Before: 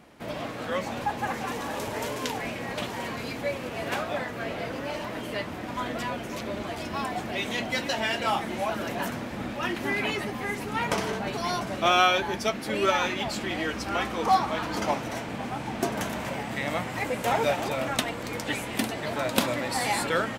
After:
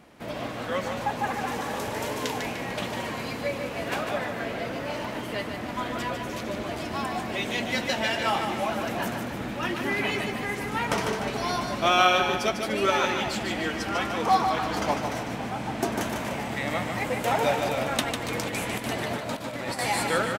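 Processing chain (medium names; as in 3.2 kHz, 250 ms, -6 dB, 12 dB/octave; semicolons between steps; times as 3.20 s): 18.27–19.79 s: compressor with a negative ratio -32 dBFS, ratio -0.5; feedback delay 149 ms, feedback 47%, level -6 dB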